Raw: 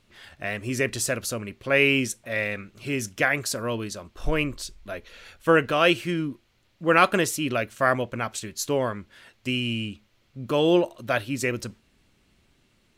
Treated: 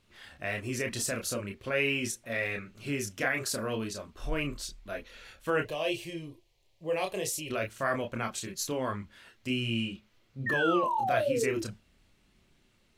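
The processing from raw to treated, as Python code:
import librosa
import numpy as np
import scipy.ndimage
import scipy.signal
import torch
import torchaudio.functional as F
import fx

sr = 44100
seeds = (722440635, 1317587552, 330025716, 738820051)

p1 = fx.over_compress(x, sr, threshold_db=-28.0, ratio=-1.0)
p2 = x + (p1 * librosa.db_to_amplitude(-3.0))
p3 = fx.fixed_phaser(p2, sr, hz=580.0, stages=4, at=(5.62, 7.5))
p4 = fx.spec_paint(p3, sr, seeds[0], shape='fall', start_s=10.46, length_s=1.16, low_hz=330.0, high_hz=1900.0, level_db=-19.0)
p5 = fx.chorus_voices(p4, sr, voices=4, hz=0.37, base_ms=29, depth_ms=2.9, mix_pct=40)
y = p5 * librosa.db_to_amplitude(-7.0)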